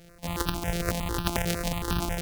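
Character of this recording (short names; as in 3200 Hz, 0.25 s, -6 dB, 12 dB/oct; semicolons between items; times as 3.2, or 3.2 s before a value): a buzz of ramps at a fixed pitch in blocks of 256 samples; tremolo saw down 1.6 Hz, depth 35%; notches that jump at a steady rate 11 Hz 270–2100 Hz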